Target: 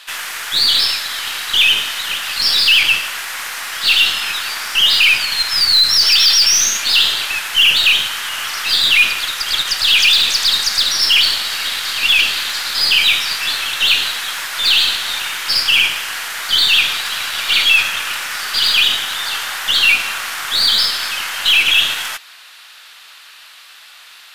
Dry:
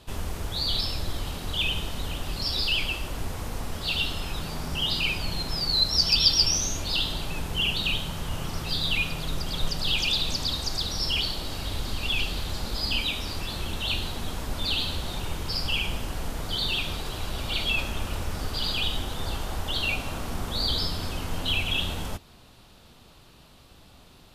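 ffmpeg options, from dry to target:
-af "apsyclip=14.1,highpass=f=1700:t=q:w=2,aeval=exprs='2*(cos(1*acos(clip(val(0)/2,-1,1)))-cos(1*PI/2))+0.0794*(cos(8*acos(clip(val(0)/2,-1,1)))-cos(8*PI/2))':c=same,volume=0.422"

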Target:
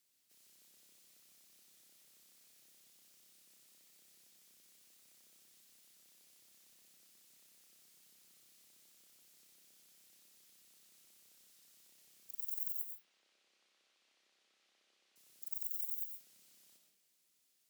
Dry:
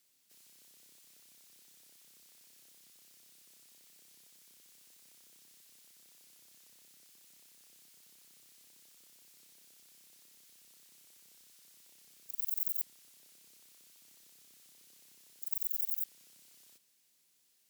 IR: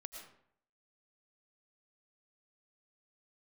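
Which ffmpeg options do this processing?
-filter_complex "[0:a]asettb=1/sr,asplit=3[s0][s1][s2];[s0]atrim=end=12.824[s3];[s1]atrim=start=12.82:end=15.16,asetpts=PTS-STARTPTS,afade=t=in:d=0.004:c=qsin,afade=t=out:st=2.336:d=0.004:c=qsin,highpass=420,lowpass=3400[s4];[s2]atrim=start=15.156[s5];[s3][s4]acrossfade=d=0.004:c1=hsin:c2=qsin[s6];[s6][s5]acrossfade=d=0.004:c1=qsin:c2=hsin[s7];[1:a]atrim=start_sample=2205[s8];[s7][s8]afir=irnorm=-1:irlink=0"

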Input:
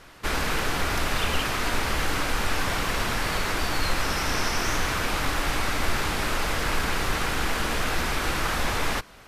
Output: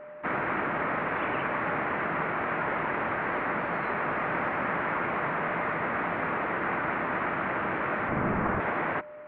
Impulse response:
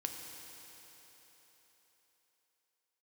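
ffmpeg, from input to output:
-filter_complex "[0:a]highpass=f=290:t=q:w=0.5412,highpass=f=290:t=q:w=1.307,lowpass=f=2300:t=q:w=0.5176,lowpass=f=2300:t=q:w=0.7071,lowpass=f=2300:t=q:w=1.932,afreqshift=-130,asettb=1/sr,asplit=3[s0][s1][s2];[s0]atrim=end=8.094[s3];[s1]atrim=start=8.09:end=8.6,asetpts=PTS-STARTPTS,afade=t=in:d=0.004:c=qsin,afade=t=out:st=0.506:d=0.004:c=qsin,aemphasis=mode=reproduction:type=riaa[s4];[s2]atrim=start=8.596[s5];[s3][s4]acrossfade=d=0.004:c1=hsin:c2=qsin[s6];[s6][s5]acrossfade=d=0.004:c1=qsin:c2=hsin,aeval=exprs='val(0)+0.00794*sin(2*PI*600*n/s)':c=same"

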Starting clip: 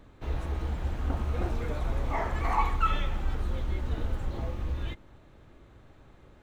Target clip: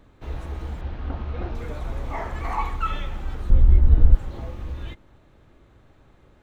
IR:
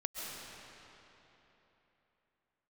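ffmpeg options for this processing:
-filter_complex "[0:a]asettb=1/sr,asplit=3[s0][s1][s2];[s0]atrim=end=0.814[s3];[s1]atrim=start=0.81:end=1.55,asetpts=PTS-STARTPTS,afade=t=in:d=0.004:c=qsin,afade=t=out:st=0.736:d=0.004:c=qsin,lowpass=f=4700:w=0.5412,lowpass=f=4700:w=1.3066[s4];[s2]atrim=start=1.546[s5];[s3][s4]acrossfade=d=0.004:c1=hsin:c2=qsin[s6];[s6][s5]acrossfade=d=0.004:c1=qsin:c2=hsin,asettb=1/sr,asplit=3[s7][s8][s9];[s7]atrim=end=3.504[s10];[s8]atrim=start=3.5:end=4.15,asetpts=PTS-STARTPTS,afade=t=in:d=0.004:c=qsin,afade=t=out:st=0.646:d=0.004:c=qsin,aemphasis=mode=reproduction:type=riaa[s11];[s9]atrim=start=4.146[s12];[s10][s11]acrossfade=d=0.004:c1=hsin:c2=qsin[s13];[s13][s12]acrossfade=d=0.004:c1=qsin:c2=hsin"

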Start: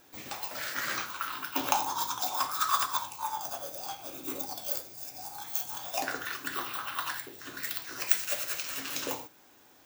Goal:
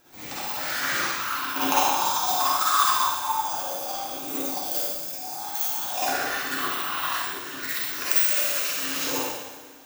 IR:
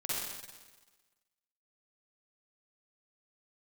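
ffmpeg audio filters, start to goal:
-filter_complex "[1:a]atrim=start_sample=2205[s0];[0:a][s0]afir=irnorm=-1:irlink=0,volume=1.5"

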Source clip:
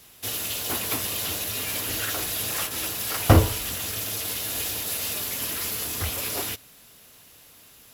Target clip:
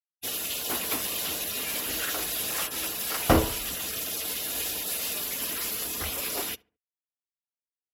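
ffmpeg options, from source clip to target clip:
-filter_complex "[0:a]afftfilt=real='re*gte(hypot(re,im),0.0141)':imag='im*gte(hypot(re,im),0.0141)':win_size=1024:overlap=0.75,equalizer=f=100:w=2.2:g=-14.5,asplit=2[s0][s1];[s1]adelay=71,lowpass=f=1500:p=1,volume=0.0794,asplit=2[s2][s3];[s3]adelay=71,lowpass=f=1500:p=1,volume=0.36,asplit=2[s4][s5];[s5]adelay=71,lowpass=f=1500:p=1,volume=0.36[s6];[s2][s4][s6]amix=inputs=3:normalize=0[s7];[s0][s7]amix=inputs=2:normalize=0,volume=0.841"

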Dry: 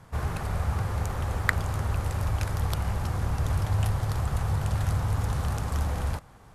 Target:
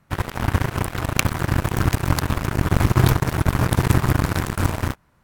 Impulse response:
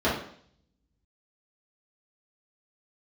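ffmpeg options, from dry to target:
-af "asetrate=55125,aresample=44100,aeval=exprs='0.75*sin(PI/2*3.98*val(0)/0.75)':c=same,aeval=exprs='0.794*(cos(1*acos(clip(val(0)/0.794,-1,1)))-cos(1*PI/2))+0.282*(cos(3*acos(clip(val(0)/0.794,-1,1)))-cos(3*PI/2))':c=same,volume=0.891"

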